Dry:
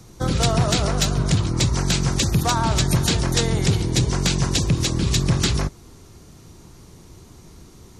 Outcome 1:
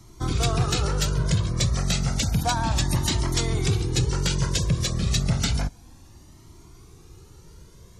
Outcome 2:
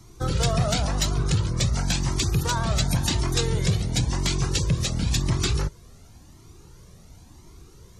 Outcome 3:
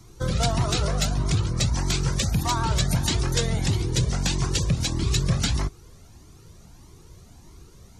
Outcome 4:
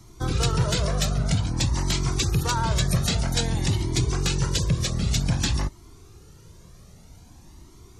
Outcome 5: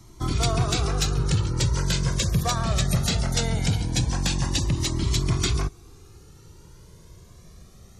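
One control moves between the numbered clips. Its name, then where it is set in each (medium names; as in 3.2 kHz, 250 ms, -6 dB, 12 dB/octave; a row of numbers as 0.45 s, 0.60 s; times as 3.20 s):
Shepard-style flanger, rate: 0.31 Hz, 0.94 Hz, 1.6 Hz, 0.52 Hz, 0.2 Hz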